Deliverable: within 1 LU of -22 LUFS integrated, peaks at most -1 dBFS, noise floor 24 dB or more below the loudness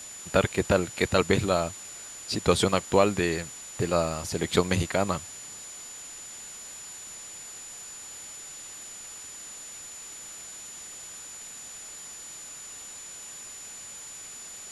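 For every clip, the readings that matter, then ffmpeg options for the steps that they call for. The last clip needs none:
steady tone 7000 Hz; tone level -41 dBFS; noise floor -43 dBFS; noise floor target -55 dBFS; loudness -30.5 LUFS; peak -6.0 dBFS; loudness target -22.0 LUFS
-> -af "bandreject=f=7k:w=30"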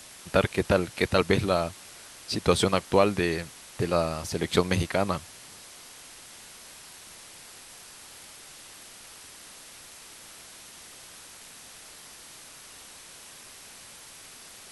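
steady tone none; noise floor -48 dBFS; noise floor target -50 dBFS
-> -af "afftdn=nr=6:nf=-48"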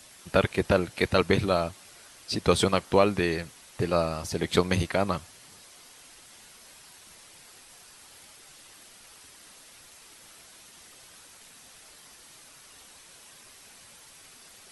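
noise floor -52 dBFS; loudness -26.0 LUFS; peak -6.0 dBFS; loudness target -22.0 LUFS
-> -af "volume=4dB"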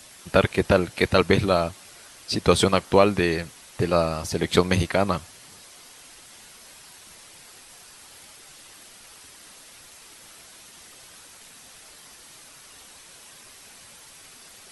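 loudness -22.0 LUFS; peak -2.0 dBFS; noise floor -48 dBFS

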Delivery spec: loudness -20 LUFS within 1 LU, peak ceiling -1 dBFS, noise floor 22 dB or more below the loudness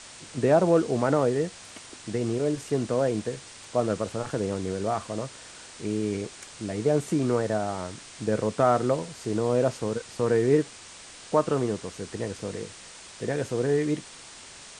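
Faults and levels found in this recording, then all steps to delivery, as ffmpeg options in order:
noise floor -46 dBFS; noise floor target -49 dBFS; loudness -27.0 LUFS; peak -8.5 dBFS; loudness target -20.0 LUFS
-> -af "afftdn=nr=6:nf=-46"
-af "volume=7dB"

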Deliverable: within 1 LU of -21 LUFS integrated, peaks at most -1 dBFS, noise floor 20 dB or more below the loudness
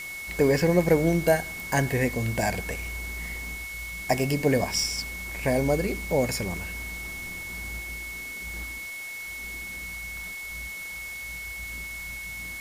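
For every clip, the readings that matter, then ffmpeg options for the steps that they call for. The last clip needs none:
steady tone 2200 Hz; tone level -35 dBFS; noise floor -37 dBFS; noise floor target -48 dBFS; loudness -28.0 LUFS; peak -8.5 dBFS; loudness target -21.0 LUFS
-> -af "bandreject=f=2.2k:w=30"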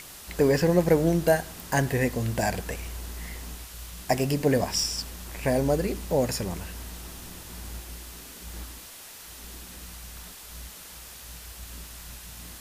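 steady tone none; noise floor -45 dBFS; noise floor target -46 dBFS
-> -af "afftdn=nr=6:nf=-45"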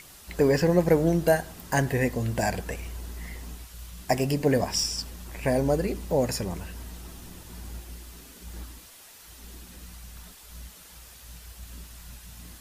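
noise floor -49 dBFS; loudness -26.0 LUFS; peak -8.5 dBFS; loudness target -21.0 LUFS
-> -af "volume=5dB"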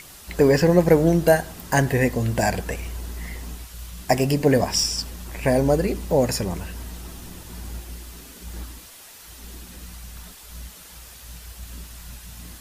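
loudness -21.0 LUFS; peak -3.5 dBFS; noise floor -44 dBFS

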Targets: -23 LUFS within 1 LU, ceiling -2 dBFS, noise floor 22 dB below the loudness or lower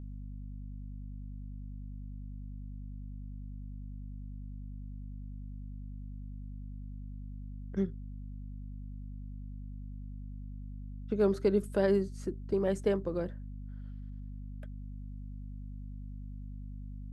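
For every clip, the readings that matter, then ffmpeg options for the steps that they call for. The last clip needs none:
hum 50 Hz; harmonics up to 250 Hz; hum level -40 dBFS; loudness -38.5 LUFS; peak -16.0 dBFS; loudness target -23.0 LUFS
-> -af "bandreject=f=50:t=h:w=4,bandreject=f=100:t=h:w=4,bandreject=f=150:t=h:w=4,bandreject=f=200:t=h:w=4,bandreject=f=250:t=h:w=4"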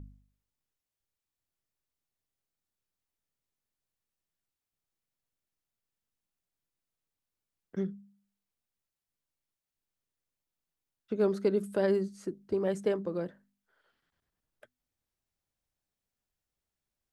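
hum none; loudness -32.0 LUFS; peak -16.5 dBFS; loudness target -23.0 LUFS
-> -af "volume=9dB"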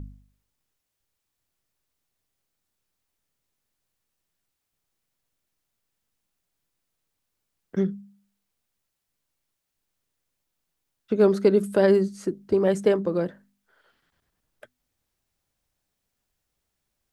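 loudness -23.0 LUFS; peak -7.5 dBFS; noise floor -81 dBFS

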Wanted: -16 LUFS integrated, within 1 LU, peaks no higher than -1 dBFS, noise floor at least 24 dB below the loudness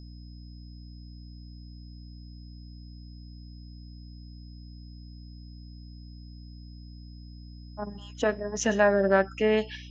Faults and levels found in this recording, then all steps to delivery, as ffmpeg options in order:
hum 60 Hz; harmonics up to 300 Hz; hum level -42 dBFS; steady tone 5100 Hz; tone level -57 dBFS; loudness -26.0 LUFS; peak -8.5 dBFS; loudness target -16.0 LUFS
-> -af "bandreject=f=60:t=h:w=6,bandreject=f=120:t=h:w=6,bandreject=f=180:t=h:w=6,bandreject=f=240:t=h:w=6,bandreject=f=300:t=h:w=6"
-af "bandreject=f=5.1k:w=30"
-af "volume=10dB,alimiter=limit=-1dB:level=0:latency=1"

